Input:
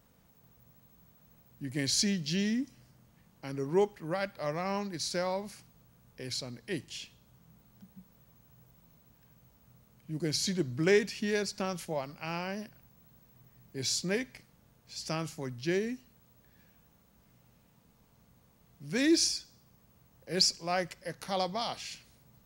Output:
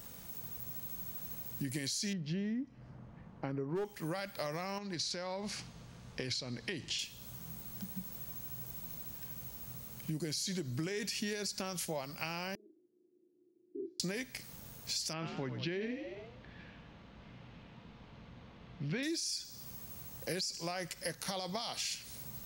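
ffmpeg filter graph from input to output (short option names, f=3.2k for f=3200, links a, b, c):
-filter_complex "[0:a]asettb=1/sr,asplit=3[a][b][c];[a]atrim=end=2.134[d];[b]atrim=start=2.13:end=3.85,asetpts=PTS-STARTPTS,afade=t=in:d=0.004:c=qsin,afade=t=out:st=1.716:d=0.004:c=qsin,lowpass=1.3k,volume=22.5dB,asoftclip=hard,volume=-22.5dB[e];[c]atrim=start=3.846[f];[d][e]acrossfade=d=0.004:c1=hsin:c2=qsin[g];[g][f]acrossfade=d=0.004:c1=qsin:c2=hsin,asettb=1/sr,asplit=3[h][i][j];[h]atrim=end=4.784[k];[i]atrim=start=4.78:end=6.99,asetpts=PTS-STARTPTS,afade=t=in:d=0.004:c=qsin,afade=t=out:st=2.206:d=0.004:c=qsin,lowpass=4.6k,acompressor=threshold=-38dB:ratio=5:attack=3.2:release=140:knee=1:detection=peak[l];[j]atrim=start=6.986[m];[k][l]acrossfade=d=0.004:c1=hsin:c2=qsin[n];[n][m]acrossfade=d=0.004:c1=qsin:c2=hsin,asettb=1/sr,asplit=3[o][p][q];[o]atrim=end=12.554[r];[p]atrim=start=12.55:end=14,asetpts=PTS-STARTPTS,afade=t=in:d=0.004:c=qsin,afade=t=out:st=1.446:d=0.004:c=qsin,asuperpass=centerf=340:order=4:qfactor=6.1,asplit=2[s][t];[t]adelay=39,volume=-3dB[u];[s][u]amix=inputs=2:normalize=0,atrim=end_sample=63945[v];[q]atrim=start=13.996[w];[r][v]acrossfade=d=0.004:c1=hsin:c2=qsin[x];[x][w]acrossfade=d=0.004:c1=qsin:c2=hsin,asettb=1/sr,asplit=3[y][z][aa];[y]atrim=end=15.134[ab];[z]atrim=start=15.13:end=19.03,asetpts=PTS-STARTPTS,afade=t=in:d=0.004:c=qsin,afade=t=out:st=3.896:d=0.004:c=qsin,lowpass=f=3.4k:w=0.5412,lowpass=f=3.4k:w=1.3066,asplit=6[ac][ad][ae][af][ag][ah];[ad]adelay=90,afreqshift=52,volume=-11dB[ai];[ae]adelay=180,afreqshift=104,volume=-17.6dB[aj];[af]adelay=270,afreqshift=156,volume=-24.1dB[ak];[ag]adelay=360,afreqshift=208,volume=-30.7dB[al];[ah]adelay=450,afreqshift=260,volume=-37.2dB[am];[ac][ai][aj][ak][al][am]amix=inputs=6:normalize=0,atrim=end_sample=171990[an];[aa]atrim=start=19.026[ao];[ab][an]acrossfade=d=0.004:c1=hsin:c2=qsin[ap];[ap][ao]acrossfade=d=0.004:c1=qsin:c2=hsin,highshelf=f=3.3k:g=11,alimiter=limit=-23.5dB:level=0:latency=1:release=53,acompressor=threshold=-46dB:ratio=6,volume=10dB"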